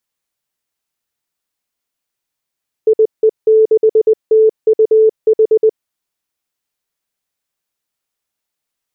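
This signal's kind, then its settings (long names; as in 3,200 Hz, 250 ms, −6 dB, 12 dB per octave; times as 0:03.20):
Morse code "IE6TUH" 20 words per minute 438 Hz −5.5 dBFS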